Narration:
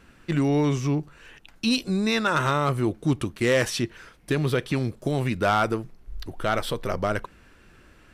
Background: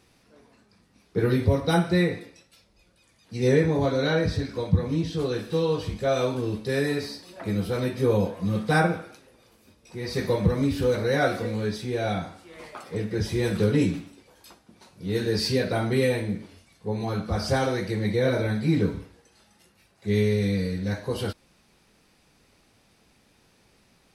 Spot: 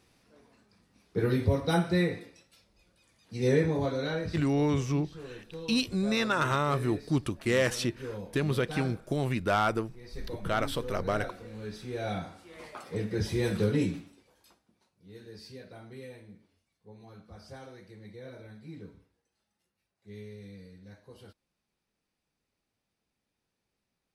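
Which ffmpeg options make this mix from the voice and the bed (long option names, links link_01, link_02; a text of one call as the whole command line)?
ffmpeg -i stem1.wav -i stem2.wav -filter_complex "[0:a]adelay=4050,volume=-4.5dB[link_01];[1:a]volume=9dB,afade=type=out:start_time=3.63:duration=0.97:silence=0.237137,afade=type=in:start_time=11.44:duration=1.04:silence=0.211349,afade=type=out:start_time=13.43:duration=1.48:silence=0.112202[link_02];[link_01][link_02]amix=inputs=2:normalize=0" out.wav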